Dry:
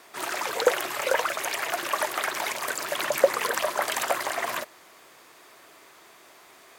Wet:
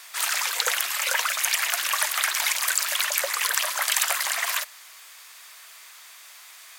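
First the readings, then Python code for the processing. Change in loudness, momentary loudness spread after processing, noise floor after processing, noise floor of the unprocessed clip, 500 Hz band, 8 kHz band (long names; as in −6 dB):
+4.0 dB, 2 LU, −47 dBFS, −53 dBFS, −12.5 dB, +9.5 dB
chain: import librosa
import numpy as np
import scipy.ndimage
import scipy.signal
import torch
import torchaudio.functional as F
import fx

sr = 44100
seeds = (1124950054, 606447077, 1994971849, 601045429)

p1 = fx.rider(x, sr, range_db=10, speed_s=0.5)
p2 = x + (p1 * 10.0 ** (0.0 / 20.0))
p3 = scipy.signal.sosfilt(scipy.signal.butter(2, 1100.0, 'highpass', fs=sr, output='sos'), p2)
p4 = fx.high_shelf(p3, sr, hz=2000.0, db=11.0)
y = p4 * 10.0 ** (-7.0 / 20.0)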